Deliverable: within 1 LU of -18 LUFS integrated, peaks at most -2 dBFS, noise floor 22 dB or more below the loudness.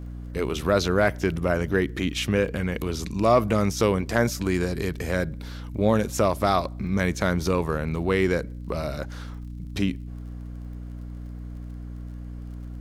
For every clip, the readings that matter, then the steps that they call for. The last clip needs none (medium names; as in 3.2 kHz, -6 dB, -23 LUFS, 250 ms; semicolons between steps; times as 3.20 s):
tick rate 38 per s; hum 60 Hz; highest harmonic 300 Hz; hum level -33 dBFS; loudness -25.0 LUFS; peak level -8.0 dBFS; loudness target -18.0 LUFS
-> de-click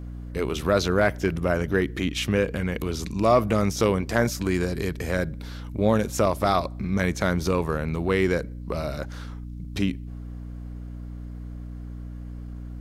tick rate 0.078 per s; hum 60 Hz; highest harmonic 300 Hz; hum level -33 dBFS
-> de-hum 60 Hz, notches 5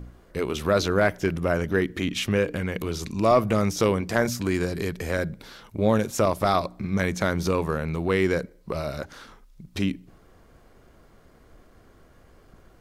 hum not found; loudness -25.0 LUFS; peak level -7.5 dBFS; loudness target -18.0 LUFS
-> trim +7 dB; peak limiter -2 dBFS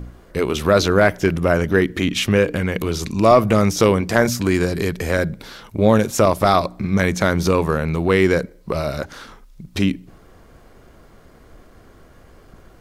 loudness -18.5 LUFS; peak level -2.0 dBFS; noise floor -48 dBFS